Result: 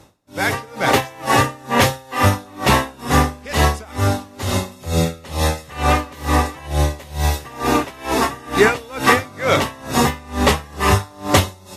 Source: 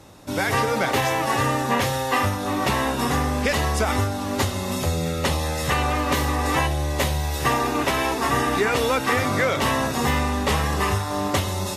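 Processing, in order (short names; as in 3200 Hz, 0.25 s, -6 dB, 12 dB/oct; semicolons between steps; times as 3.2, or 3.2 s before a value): AGC gain up to 11.5 dB; dB-linear tremolo 2.2 Hz, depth 27 dB; gain +1 dB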